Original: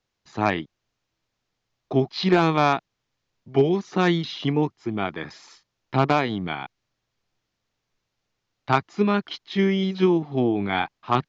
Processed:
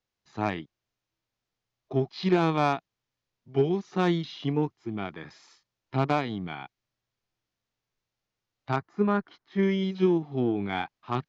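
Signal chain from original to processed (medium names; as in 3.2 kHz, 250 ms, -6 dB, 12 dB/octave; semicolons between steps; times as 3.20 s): 8.76–9.63 s: resonant high shelf 2.1 kHz -8.5 dB, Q 1.5; harmonic-percussive split percussive -7 dB; Chebyshev shaper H 7 -35 dB, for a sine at -8 dBFS; trim -3.5 dB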